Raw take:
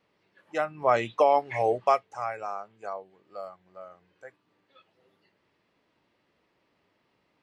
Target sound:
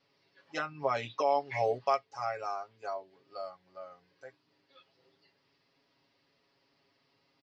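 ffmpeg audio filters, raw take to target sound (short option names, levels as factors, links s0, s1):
-af "alimiter=limit=0.15:level=0:latency=1:release=461,lowpass=f=5000:t=q:w=4.5,aecho=1:1:7.3:0.84,volume=0.562"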